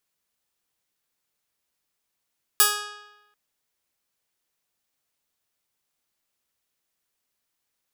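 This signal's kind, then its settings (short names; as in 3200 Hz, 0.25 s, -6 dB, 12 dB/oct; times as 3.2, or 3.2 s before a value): plucked string G#4, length 0.74 s, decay 1.01 s, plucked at 0.2, bright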